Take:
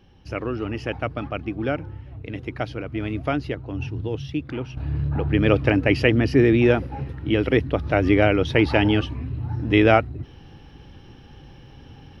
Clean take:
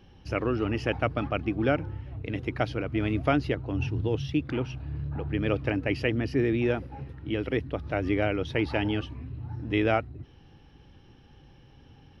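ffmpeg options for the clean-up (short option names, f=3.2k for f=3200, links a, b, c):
-af "asetnsamples=n=441:p=0,asendcmd='4.77 volume volume -9dB',volume=0dB"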